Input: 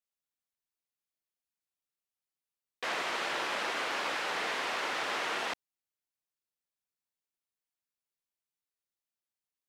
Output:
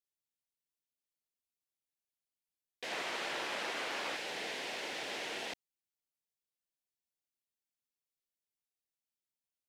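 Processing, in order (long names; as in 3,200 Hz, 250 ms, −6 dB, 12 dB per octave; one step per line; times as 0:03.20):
parametric band 1,200 Hz −14.5 dB 0.82 octaves, from 0:02.92 −5 dB, from 0:04.16 −14 dB
level −3 dB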